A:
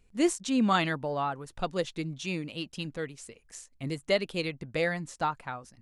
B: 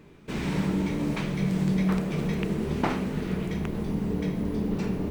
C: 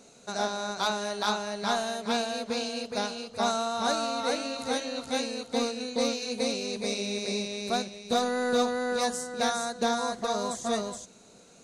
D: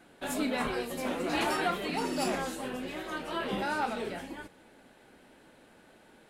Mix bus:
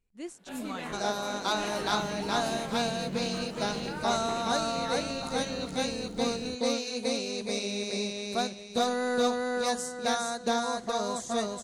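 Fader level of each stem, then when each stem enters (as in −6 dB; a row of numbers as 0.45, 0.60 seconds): −15.0, −13.5, −1.0, −8.0 decibels; 0.00, 1.45, 0.65, 0.25 seconds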